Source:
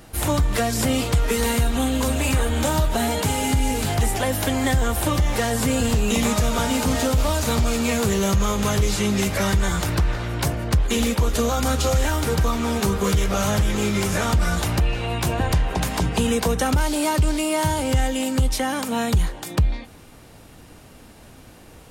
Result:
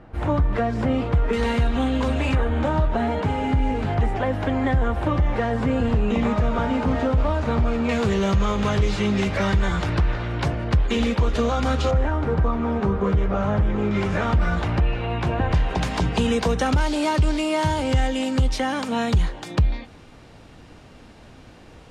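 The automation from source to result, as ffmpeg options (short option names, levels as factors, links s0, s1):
-af "asetnsamples=n=441:p=0,asendcmd='1.33 lowpass f 2900;2.35 lowpass f 1800;7.89 lowpass f 3400;11.91 lowpass f 1400;13.91 lowpass f 2400;15.54 lowpass f 5000',lowpass=1600"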